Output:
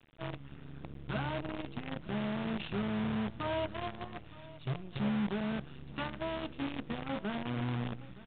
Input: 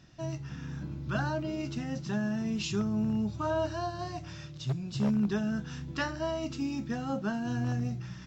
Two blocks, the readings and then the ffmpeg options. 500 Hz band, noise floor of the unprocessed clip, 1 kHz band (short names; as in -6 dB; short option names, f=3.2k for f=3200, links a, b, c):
-4.0 dB, -45 dBFS, -2.5 dB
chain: -af "bandreject=f=1.7k:w=8.5,aresample=11025,acrusher=bits=6:dc=4:mix=0:aa=0.000001,aresample=44100,aecho=1:1:918:0.112,aresample=8000,aresample=44100,volume=-5dB"